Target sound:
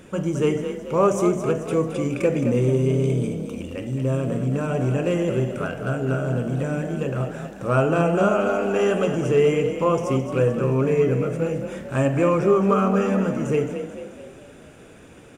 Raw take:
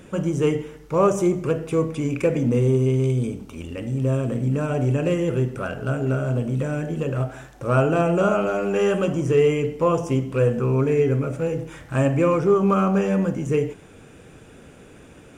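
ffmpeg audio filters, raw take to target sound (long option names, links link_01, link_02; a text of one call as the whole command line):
ffmpeg -i in.wav -filter_complex "[0:a]lowshelf=frequency=160:gain=-3,asplit=7[link_01][link_02][link_03][link_04][link_05][link_06][link_07];[link_02]adelay=218,afreqshift=34,volume=-9dB[link_08];[link_03]adelay=436,afreqshift=68,volume=-15dB[link_09];[link_04]adelay=654,afreqshift=102,volume=-21dB[link_10];[link_05]adelay=872,afreqshift=136,volume=-27.1dB[link_11];[link_06]adelay=1090,afreqshift=170,volume=-33.1dB[link_12];[link_07]adelay=1308,afreqshift=204,volume=-39.1dB[link_13];[link_01][link_08][link_09][link_10][link_11][link_12][link_13]amix=inputs=7:normalize=0" out.wav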